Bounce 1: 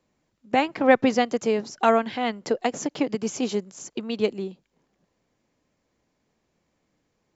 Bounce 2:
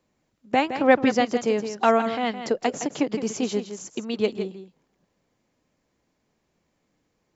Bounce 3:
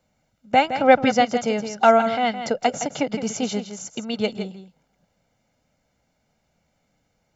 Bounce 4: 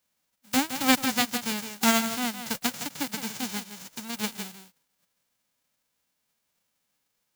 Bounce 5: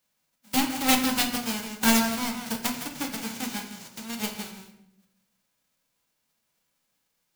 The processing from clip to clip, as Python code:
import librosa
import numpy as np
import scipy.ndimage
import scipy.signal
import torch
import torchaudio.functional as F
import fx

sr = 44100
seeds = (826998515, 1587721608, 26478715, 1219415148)

y1 = x + 10.0 ** (-10.0 / 20.0) * np.pad(x, (int(164 * sr / 1000.0), 0))[:len(x)]
y2 = y1 + 0.63 * np.pad(y1, (int(1.4 * sr / 1000.0), 0))[:len(y1)]
y2 = y2 * 10.0 ** (2.0 / 20.0)
y3 = fx.envelope_flatten(y2, sr, power=0.1)
y3 = y3 * 10.0 ** (-7.5 / 20.0)
y4 = fx.self_delay(y3, sr, depth_ms=0.48)
y4 = fx.room_shoebox(y4, sr, seeds[0], volume_m3=220.0, walls='mixed', distance_m=0.66)